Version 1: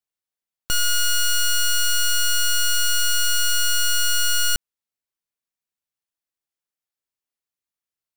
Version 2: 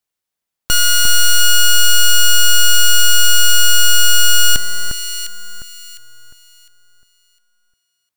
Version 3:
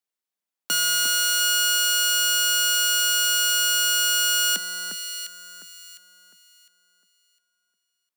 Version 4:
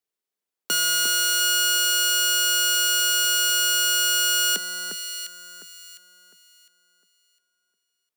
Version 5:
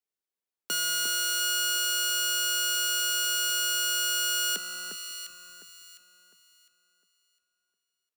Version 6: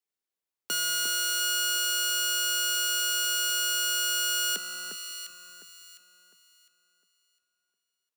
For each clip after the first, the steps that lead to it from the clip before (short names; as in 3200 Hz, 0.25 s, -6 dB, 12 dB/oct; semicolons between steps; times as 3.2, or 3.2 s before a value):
echo with dull and thin repeats by turns 0.353 s, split 1700 Hz, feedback 52%, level -4.5 dB; gain +8 dB
steep high-pass 170 Hz 96 dB/oct; gain -7.5 dB
bell 410 Hz +9 dB 0.54 oct
frequency-shifting echo 0.193 s, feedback 62%, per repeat -65 Hz, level -20.5 dB; gain -6.5 dB
low shelf 64 Hz -8.5 dB